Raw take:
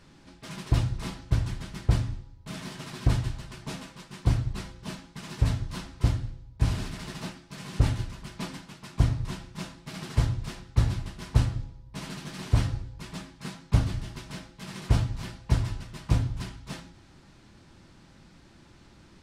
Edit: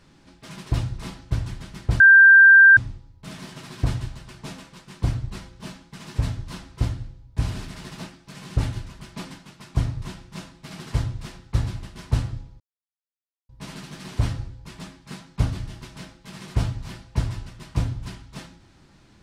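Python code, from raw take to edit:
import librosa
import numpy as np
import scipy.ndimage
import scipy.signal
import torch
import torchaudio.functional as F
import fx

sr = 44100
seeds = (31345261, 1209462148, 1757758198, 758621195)

y = fx.edit(x, sr, fx.insert_tone(at_s=2.0, length_s=0.77, hz=1580.0, db=-7.0),
    fx.insert_silence(at_s=11.83, length_s=0.89), tone=tone)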